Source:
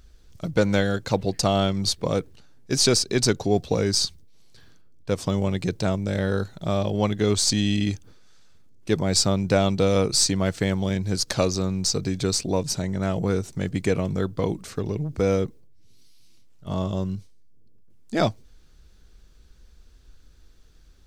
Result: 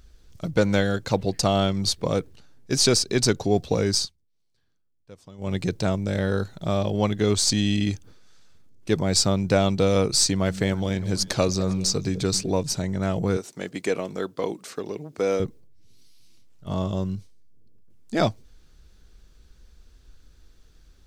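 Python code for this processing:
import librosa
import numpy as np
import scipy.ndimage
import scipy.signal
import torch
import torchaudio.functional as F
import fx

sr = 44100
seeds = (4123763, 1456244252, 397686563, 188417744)

y = fx.echo_stepped(x, sr, ms=101, hz=160.0, octaves=1.4, feedback_pct=70, wet_db=-8.5, at=(10.38, 12.51))
y = fx.highpass(y, sr, hz=310.0, slope=12, at=(13.37, 15.4))
y = fx.edit(y, sr, fx.fade_down_up(start_s=3.96, length_s=1.58, db=-21.0, fade_s=0.16), tone=tone)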